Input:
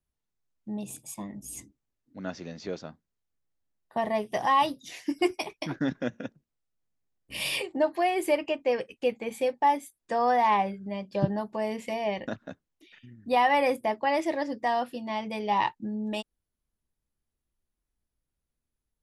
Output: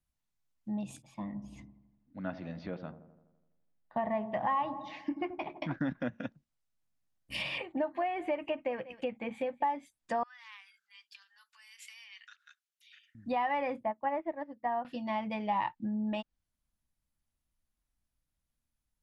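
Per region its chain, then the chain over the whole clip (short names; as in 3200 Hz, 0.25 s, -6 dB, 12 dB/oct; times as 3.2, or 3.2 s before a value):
1.02–5.71 air absorption 300 m + dark delay 83 ms, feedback 60%, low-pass 830 Hz, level -11 dB
7.58–9.65 bell 5200 Hz -11.5 dB 0.54 oct + echo 0.193 s -21 dB
10.23–13.15 bell 1800 Hz -5 dB 0.78 oct + compressor 2.5:1, threshold -39 dBFS + elliptic high-pass 1400 Hz, stop band 60 dB
13.83–14.85 LPF 1600 Hz + upward expander 2.5:1, over -36 dBFS
whole clip: compressor 12:1, threshold -26 dBFS; treble ducked by the level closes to 2200 Hz, closed at -29.5 dBFS; bell 410 Hz -12.5 dB 0.43 oct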